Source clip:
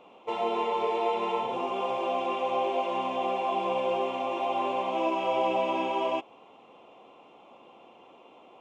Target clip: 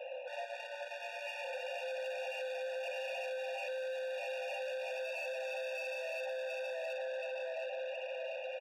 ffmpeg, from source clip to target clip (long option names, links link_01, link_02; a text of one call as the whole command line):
ffmpeg -i in.wav -filter_complex "[0:a]bandreject=frequency=3400:width=12,asplit=2[link_01][link_02];[link_02]adelay=723,lowpass=frequency=2600:poles=1,volume=-6.5dB,asplit=2[link_03][link_04];[link_04]adelay=723,lowpass=frequency=2600:poles=1,volume=0.42,asplit=2[link_05][link_06];[link_06]adelay=723,lowpass=frequency=2600:poles=1,volume=0.42,asplit=2[link_07][link_08];[link_08]adelay=723,lowpass=frequency=2600:poles=1,volume=0.42,asplit=2[link_09][link_10];[link_10]adelay=723,lowpass=frequency=2600:poles=1,volume=0.42[link_11];[link_01][link_03][link_05][link_07][link_09][link_11]amix=inputs=6:normalize=0,acrossover=split=400|1300[link_12][link_13][link_14];[link_13]asoftclip=type=hard:threshold=-32.5dB[link_15];[link_14]dynaudnorm=framelen=250:gausssize=9:maxgain=9dB[link_16];[link_12][link_15][link_16]amix=inputs=3:normalize=0,highpass=110,aemphasis=mode=production:type=50fm,alimiter=level_in=3dB:limit=-24dB:level=0:latency=1,volume=-3dB,asplit=3[link_17][link_18][link_19];[link_17]bandpass=frequency=530:width_type=q:width=8,volume=0dB[link_20];[link_18]bandpass=frequency=1840:width_type=q:width=8,volume=-6dB[link_21];[link_19]bandpass=frequency=2480:width_type=q:width=8,volume=-9dB[link_22];[link_20][link_21][link_22]amix=inputs=3:normalize=0,highshelf=frequency=4100:gain=-10,asplit=2[link_23][link_24];[link_24]highpass=frequency=720:poles=1,volume=27dB,asoftclip=type=tanh:threshold=-34dB[link_25];[link_23][link_25]amix=inputs=2:normalize=0,lowpass=frequency=3400:poles=1,volume=-6dB,acompressor=threshold=-44dB:ratio=4,afftfilt=real='re*eq(mod(floor(b*sr/1024/480),2),1)':imag='im*eq(mod(floor(b*sr/1024/480),2),1)':win_size=1024:overlap=0.75,volume=6dB" out.wav